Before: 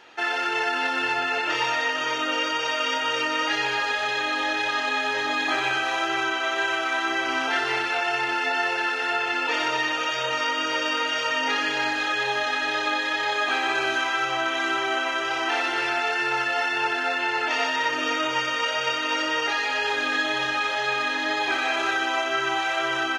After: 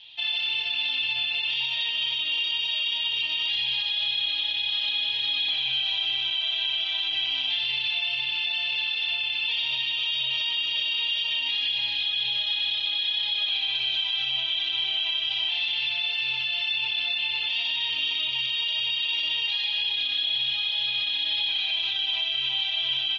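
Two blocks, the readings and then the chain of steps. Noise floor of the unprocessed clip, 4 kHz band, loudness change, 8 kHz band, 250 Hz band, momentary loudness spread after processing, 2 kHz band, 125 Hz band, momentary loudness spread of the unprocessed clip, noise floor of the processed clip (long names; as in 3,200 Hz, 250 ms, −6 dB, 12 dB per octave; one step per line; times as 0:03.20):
−27 dBFS, +7.0 dB, −0.5 dB, below −15 dB, below −20 dB, 1 LU, −7.0 dB, can't be measured, 1 LU, −29 dBFS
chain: loose part that buzzes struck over −42 dBFS, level −26 dBFS
drawn EQ curve 110 Hz 0 dB, 370 Hz −26 dB, 980 Hz −16 dB, 1,400 Hz −29 dB, 3,400 Hz +15 dB, 7,700 Hz −28 dB
brickwall limiter −18.5 dBFS, peak gain reduction 8.5 dB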